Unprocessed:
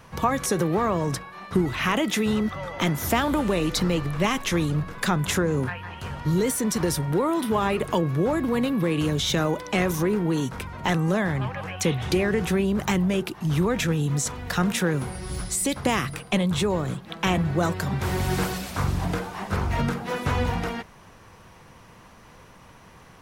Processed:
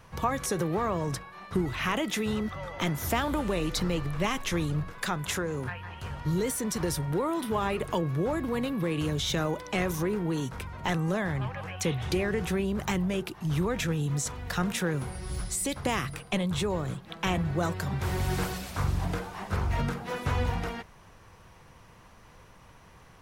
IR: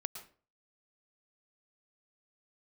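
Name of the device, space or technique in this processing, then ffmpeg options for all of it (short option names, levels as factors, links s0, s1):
low shelf boost with a cut just above: -filter_complex "[0:a]lowshelf=f=93:g=5.5,equalizer=f=230:t=o:w=1:g=-3,asettb=1/sr,asplit=3[s0][s1][s2];[s0]atrim=end=4.904[s3];[s1]atrim=start=4.9:end=5.66,asetpts=PTS-STARTPTS,afade=t=in:d=0.004:c=qsin,afade=t=out:st=0.756:d=0.004:c=qsin,lowshelf=f=350:g=-6[s4];[s2]atrim=start=5.656[s5];[s3][s4]acrossfade=d=0.004:c1=hsin:c2=qsin[s6];[s6][s5]acrossfade=d=0.004:c1=qsin:c2=hsin,volume=0.562"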